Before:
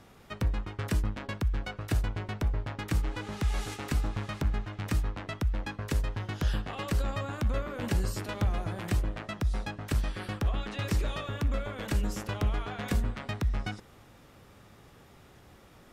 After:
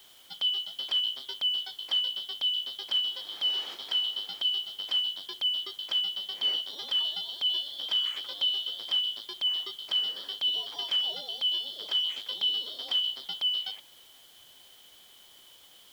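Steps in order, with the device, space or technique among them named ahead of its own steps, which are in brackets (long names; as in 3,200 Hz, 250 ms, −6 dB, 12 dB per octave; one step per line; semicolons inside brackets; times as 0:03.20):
split-band scrambled radio (band-splitting scrambler in four parts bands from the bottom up 3412; band-pass filter 310–3,100 Hz; white noise bed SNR 27 dB)
level +1.5 dB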